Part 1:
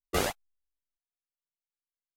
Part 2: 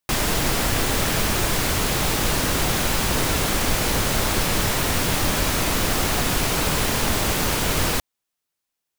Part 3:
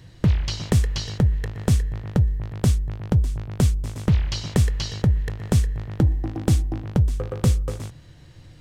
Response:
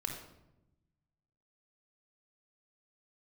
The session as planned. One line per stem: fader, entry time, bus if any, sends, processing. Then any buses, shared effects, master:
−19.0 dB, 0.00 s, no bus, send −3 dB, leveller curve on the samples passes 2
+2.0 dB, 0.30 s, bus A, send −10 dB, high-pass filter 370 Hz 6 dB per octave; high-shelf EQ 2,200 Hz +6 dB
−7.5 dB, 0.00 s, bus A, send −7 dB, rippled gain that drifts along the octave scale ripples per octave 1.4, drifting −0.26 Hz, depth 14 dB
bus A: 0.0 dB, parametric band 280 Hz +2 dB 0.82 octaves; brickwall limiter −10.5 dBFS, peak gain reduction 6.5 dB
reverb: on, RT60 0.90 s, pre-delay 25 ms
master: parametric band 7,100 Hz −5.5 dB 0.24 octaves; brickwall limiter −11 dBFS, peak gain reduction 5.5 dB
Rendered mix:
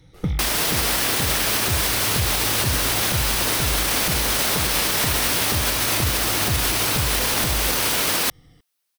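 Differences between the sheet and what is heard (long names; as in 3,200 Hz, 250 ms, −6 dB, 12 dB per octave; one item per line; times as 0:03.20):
stem 1 −19.0 dB → −30.0 dB
stem 2: send off
stem 3: send −7 dB → −13.5 dB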